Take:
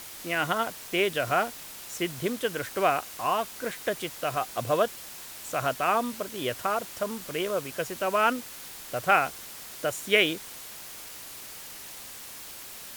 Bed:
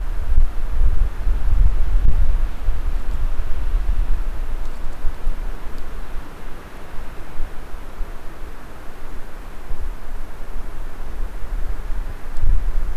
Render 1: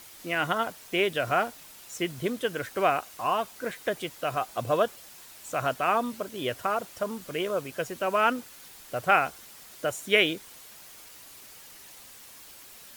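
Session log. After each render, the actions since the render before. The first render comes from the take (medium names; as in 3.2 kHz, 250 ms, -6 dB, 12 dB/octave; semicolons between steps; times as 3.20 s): noise reduction 7 dB, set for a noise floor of -43 dBFS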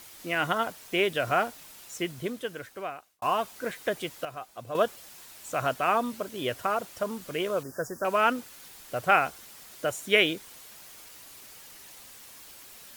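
1.81–3.22 s: fade out; 4.25–4.75 s: gain -10.5 dB; 7.63–8.05 s: Chebyshev band-stop 1.8–4.9 kHz, order 5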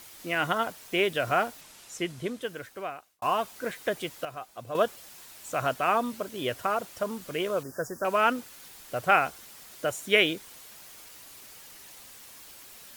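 1.61–2.42 s: low-pass 11 kHz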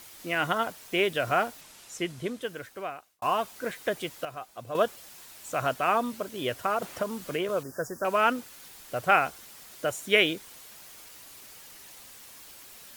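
6.82–7.49 s: three bands compressed up and down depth 70%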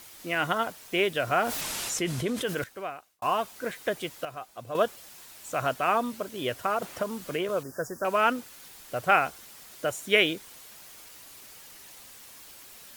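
1.41–2.64 s: level flattener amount 70%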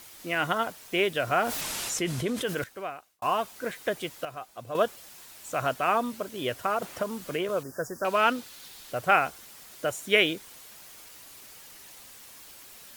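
7.95–8.92 s: peaking EQ 3.9 kHz +6.5 dB 0.86 oct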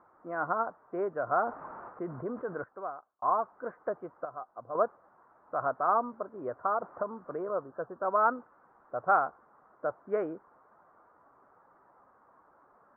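steep low-pass 1.3 kHz 48 dB/octave; tilt EQ +4 dB/octave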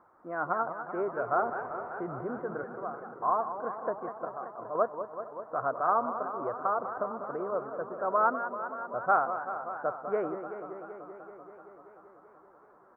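echo from a far wall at 78 m, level -22 dB; modulated delay 192 ms, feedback 79%, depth 163 cents, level -10 dB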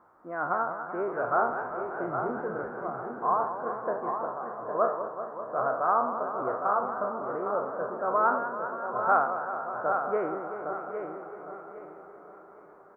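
spectral sustain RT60 0.51 s; feedback delay 808 ms, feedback 32%, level -7 dB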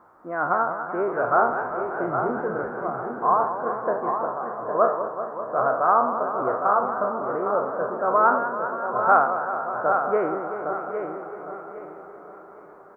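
trim +6 dB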